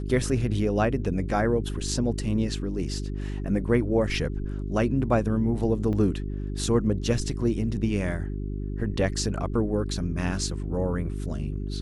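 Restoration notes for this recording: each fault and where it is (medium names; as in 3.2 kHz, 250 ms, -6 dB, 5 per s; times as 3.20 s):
hum 50 Hz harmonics 8 -31 dBFS
5.93 s: dropout 4.9 ms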